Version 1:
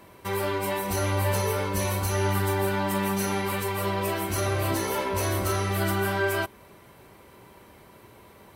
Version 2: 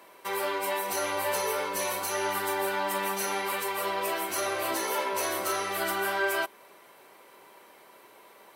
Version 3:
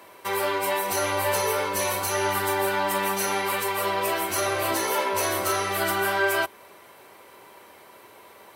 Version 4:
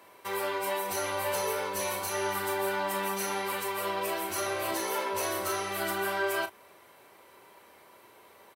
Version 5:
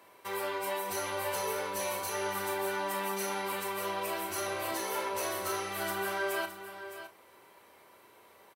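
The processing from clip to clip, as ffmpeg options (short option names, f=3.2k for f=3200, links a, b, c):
-af "highpass=460"
-af "equalizer=f=82:w=1.5:g=13.5,volume=4.5dB"
-filter_complex "[0:a]asplit=2[a][b];[b]adelay=36,volume=-9.5dB[c];[a][c]amix=inputs=2:normalize=0,volume=-7dB"
-af "aecho=1:1:613:0.266,volume=-3dB"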